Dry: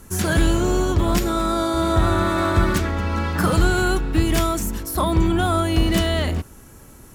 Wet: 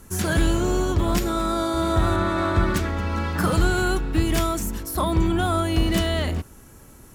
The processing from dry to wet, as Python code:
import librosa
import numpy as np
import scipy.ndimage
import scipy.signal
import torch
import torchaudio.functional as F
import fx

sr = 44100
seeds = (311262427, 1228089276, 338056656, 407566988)

y = fx.high_shelf(x, sr, hz=7800.0, db=-11.0, at=(2.16, 2.76))
y = y * 10.0 ** (-2.5 / 20.0)